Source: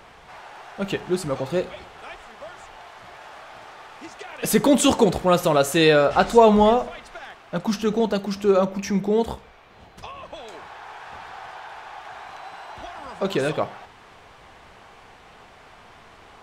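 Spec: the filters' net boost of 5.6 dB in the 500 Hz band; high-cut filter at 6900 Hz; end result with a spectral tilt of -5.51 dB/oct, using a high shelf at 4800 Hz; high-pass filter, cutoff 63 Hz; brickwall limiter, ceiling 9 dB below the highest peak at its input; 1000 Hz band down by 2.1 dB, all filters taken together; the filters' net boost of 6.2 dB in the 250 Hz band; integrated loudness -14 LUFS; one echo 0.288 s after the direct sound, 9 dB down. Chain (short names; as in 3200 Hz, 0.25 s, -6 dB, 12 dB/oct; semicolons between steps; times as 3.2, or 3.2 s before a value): HPF 63 Hz; LPF 6900 Hz; bell 250 Hz +6.5 dB; bell 500 Hz +6.5 dB; bell 1000 Hz -6.5 dB; high shelf 4800 Hz -4 dB; limiter -6 dBFS; echo 0.288 s -9 dB; gain +3.5 dB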